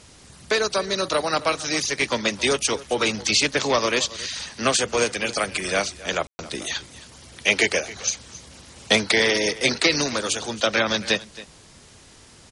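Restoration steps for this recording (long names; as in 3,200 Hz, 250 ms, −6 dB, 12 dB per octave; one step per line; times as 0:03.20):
ambience match 0:06.27–0:06.39
echo removal 271 ms −18 dB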